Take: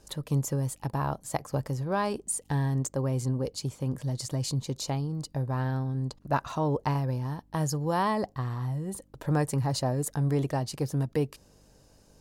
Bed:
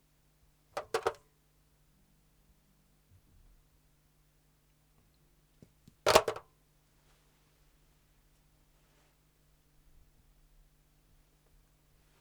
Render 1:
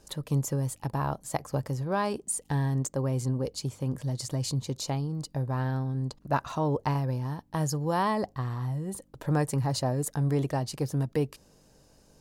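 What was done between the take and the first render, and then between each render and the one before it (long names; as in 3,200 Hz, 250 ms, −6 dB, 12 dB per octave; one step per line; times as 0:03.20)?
hum removal 50 Hz, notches 2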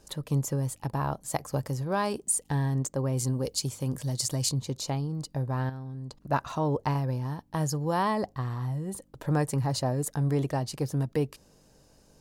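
0:01.28–0:02.43: high-shelf EQ 4,900 Hz +5.5 dB
0:03.17–0:04.49: high-shelf EQ 3,700 Hz +10.5 dB
0:05.69–0:06.16: downward compressor, threshold −35 dBFS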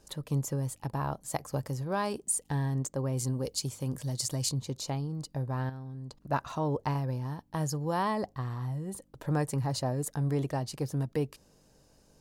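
level −3 dB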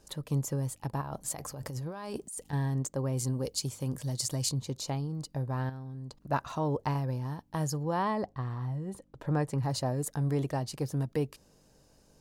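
0:01.01–0:02.53: compressor whose output falls as the input rises −38 dBFS
0:07.83–0:09.63: low-pass filter 3,100 Hz 6 dB per octave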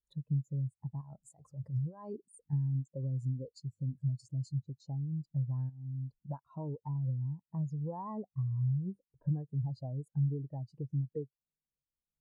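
downward compressor 5 to 1, threshold −38 dBFS, peak gain reduction 13 dB
every bin expanded away from the loudest bin 2.5 to 1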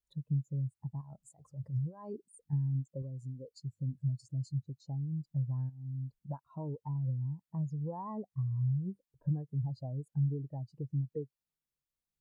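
0:03.02–0:03.51: low-shelf EQ 280 Hz −9.5 dB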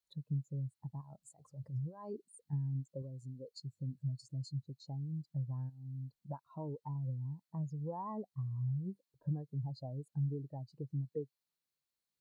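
high-pass filter 190 Hz 6 dB per octave
parametric band 4,200 Hz +8.5 dB 0.25 octaves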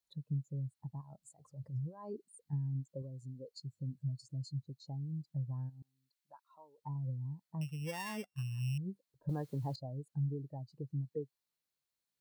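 0:05.82–0:06.78: high-pass filter 1,300 Hz
0:07.61–0:08.78: samples sorted by size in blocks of 16 samples
0:09.29–0:09.76: every bin compressed towards the loudest bin 2 to 1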